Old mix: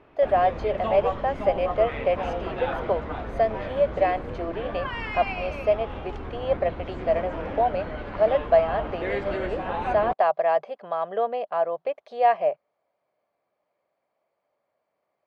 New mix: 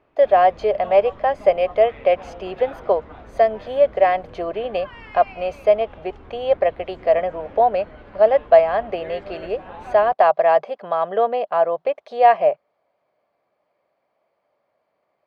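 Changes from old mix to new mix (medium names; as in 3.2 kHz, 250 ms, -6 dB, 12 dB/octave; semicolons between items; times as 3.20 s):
speech +6.5 dB; background -8.5 dB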